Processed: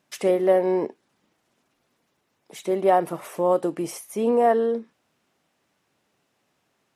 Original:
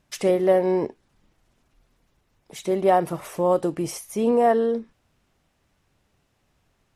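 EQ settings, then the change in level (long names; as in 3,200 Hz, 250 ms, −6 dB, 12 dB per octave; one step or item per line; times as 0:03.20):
high-pass filter 210 Hz 12 dB per octave
dynamic equaliser 5,300 Hz, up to −4 dB, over −47 dBFS, Q 0.93
0.0 dB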